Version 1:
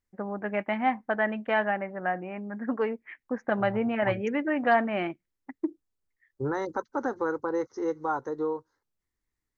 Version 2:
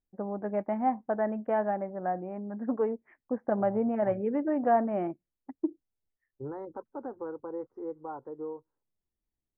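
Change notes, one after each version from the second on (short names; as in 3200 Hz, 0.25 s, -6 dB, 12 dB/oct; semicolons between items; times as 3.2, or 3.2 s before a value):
second voice -8.0 dB; master: add Chebyshev low-pass 730 Hz, order 2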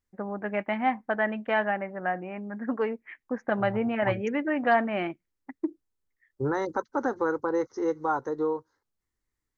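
second voice +10.0 dB; master: remove Chebyshev low-pass 730 Hz, order 2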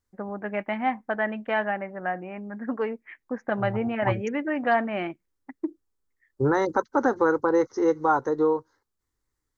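second voice +5.5 dB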